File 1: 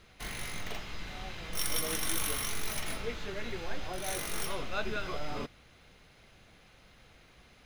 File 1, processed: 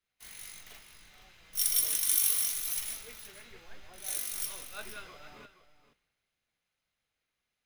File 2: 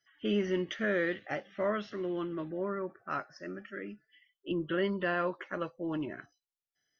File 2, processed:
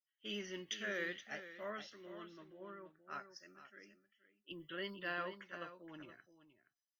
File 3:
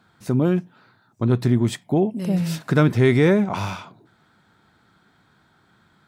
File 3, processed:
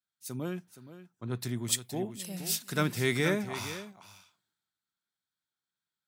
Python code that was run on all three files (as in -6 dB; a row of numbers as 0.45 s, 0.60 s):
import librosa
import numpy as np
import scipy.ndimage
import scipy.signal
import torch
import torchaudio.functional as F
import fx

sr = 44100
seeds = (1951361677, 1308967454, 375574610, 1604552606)

y = F.preemphasis(torch.from_numpy(x), 0.9).numpy()
y = y + 10.0 ** (-8.5 / 20.0) * np.pad(y, (int(472 * sr / 1000.0), 0))[:len(y)]
y = fx.band_widen(y, sr, depth_pct=70)
y = y * librosa.db_to_amplitude(2.5)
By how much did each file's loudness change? +7.0 LU, -11.0 LU, -12.0 LU